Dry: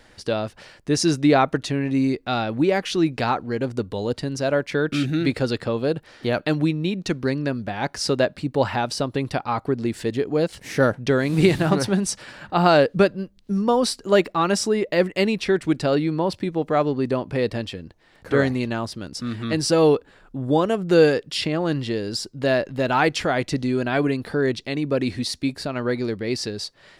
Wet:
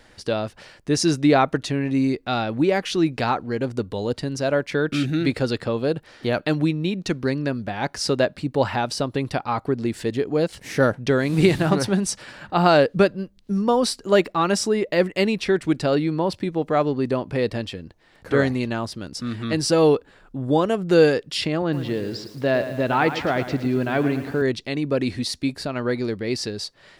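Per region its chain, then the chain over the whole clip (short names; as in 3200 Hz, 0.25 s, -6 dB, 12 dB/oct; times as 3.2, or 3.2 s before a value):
21.62–24.42 HPF 55 Hz 24 dB/oct + air absorption 170 m + lo-fi delay 0.111 s, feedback 55%, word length 7-bit, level -10.5 dB
whole clip: dry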